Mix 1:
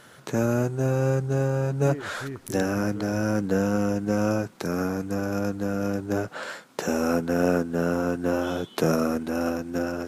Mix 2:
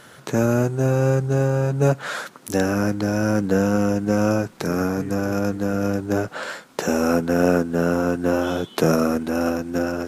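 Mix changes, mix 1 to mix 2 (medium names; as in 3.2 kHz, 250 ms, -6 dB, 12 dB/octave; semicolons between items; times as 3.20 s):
speech: entry +2.75 s; background +4.5 dB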